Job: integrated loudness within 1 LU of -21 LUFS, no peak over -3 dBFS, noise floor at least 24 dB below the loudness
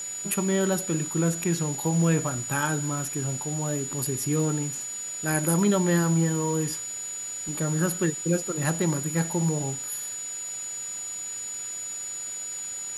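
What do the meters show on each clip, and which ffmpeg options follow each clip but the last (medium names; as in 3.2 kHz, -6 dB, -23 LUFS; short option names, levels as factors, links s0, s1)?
steady tone 6.9 kHz; tone level -32 dBFS; noise floor -35 dBFS; noise floor target -51 dBFS; loudness -26.5 LUFS; peak level -7.5 dBFS; loudness target -21.0 LUFS
-> -af "bandreject=f=6900:w=30"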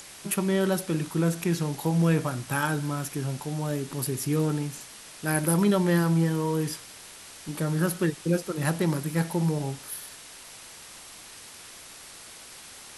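steady tone not found; noise floor -46 dBFS; noise floor target -51 dBFS
-> -af "afftdn=nr=6:nf=-46"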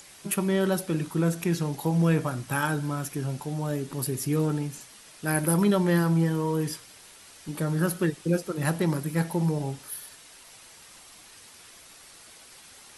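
noise floor -51 dBFS; loudness -27.0 LUFS; peak level -8.0 dBFS; loudness target -21.0 LUFS
-> -af "volume=2,alimiter=limit=0.708:level=0:latency=1"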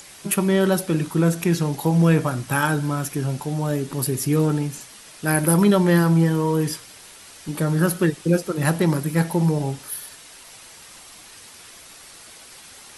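loudness -21.0 LUFS; peak level -3.0 dBFS; noise floor -45 dBFS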